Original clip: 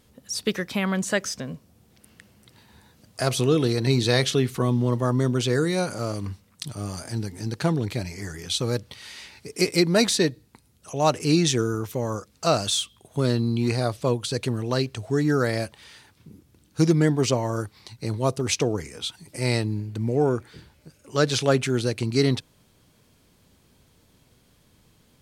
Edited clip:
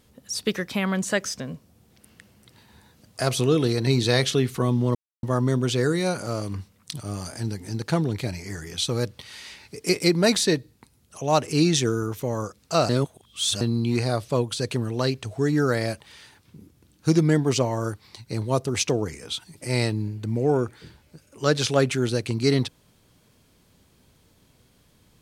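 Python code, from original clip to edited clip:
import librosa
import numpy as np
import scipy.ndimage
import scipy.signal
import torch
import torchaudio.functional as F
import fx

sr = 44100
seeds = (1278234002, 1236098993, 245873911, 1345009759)

y = fx.edit(x, sr, fx.insert_silence(at_s=4.95, length_s=0.28),
    fx.reverse_span(start_s=12.61, length_s=0.72), tone=tone)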